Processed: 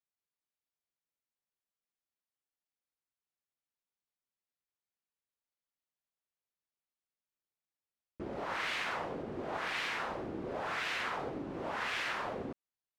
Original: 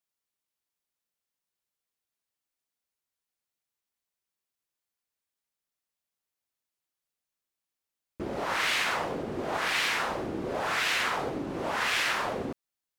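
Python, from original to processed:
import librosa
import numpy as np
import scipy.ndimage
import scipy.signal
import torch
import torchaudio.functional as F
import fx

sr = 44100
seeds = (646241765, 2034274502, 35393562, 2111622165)

y = fx.lowpass(x, sr, hz=2900.0, slope=6)
y = y * librosa.db_to_amplitude(-6.5)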